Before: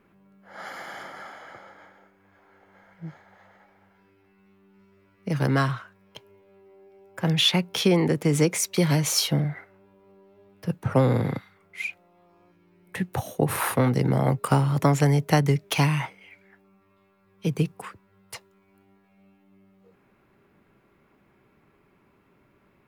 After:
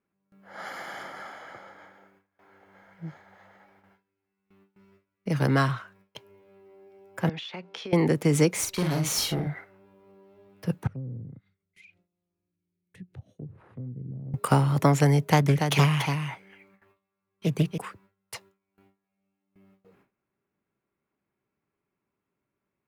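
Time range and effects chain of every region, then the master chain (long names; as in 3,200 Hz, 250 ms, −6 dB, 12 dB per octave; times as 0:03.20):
0:07.29–0:07.93: high-pass filter 290 Hz + downward compressor 16 to 1, threshold −32 dBFS + high-frequency loss of the air 140 metres
0:08.51–0:09.47: tube saturation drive 22 dB, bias 0.65 + double-tracking delay 44 ms −4.5 dB
0:10.87–0:14.34: treble cut that deepens with the level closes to 520 Hz, closed at −20.5 dBFS + guitar amp tone stack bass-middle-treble 10-0-1 + upward compression, threshold −47 dBFS
0:15.24–0:17.78: notch filter 5,300 Hz, Q 15 + single-tap delay 286 ms −6.5 dB + highs frequency-modulated by the lows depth 0.37 ms
whole clip: high-pass filter 48 Hz 6 dB per octave; noise gate with hold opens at −50 dBFS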